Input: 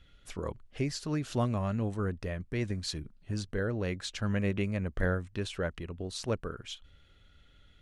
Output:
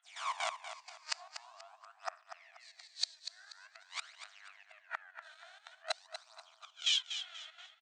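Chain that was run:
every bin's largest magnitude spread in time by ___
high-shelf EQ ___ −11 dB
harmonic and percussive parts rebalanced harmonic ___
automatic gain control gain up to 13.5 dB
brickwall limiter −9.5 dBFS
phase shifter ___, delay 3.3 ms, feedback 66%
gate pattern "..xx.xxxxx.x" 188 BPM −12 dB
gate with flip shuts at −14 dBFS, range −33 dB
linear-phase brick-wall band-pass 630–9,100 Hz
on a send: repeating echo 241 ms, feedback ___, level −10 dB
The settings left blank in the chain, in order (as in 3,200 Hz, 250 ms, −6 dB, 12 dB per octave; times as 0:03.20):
480 ms, 6,500 Hz, −13 dB, 0.47 Hz, 32%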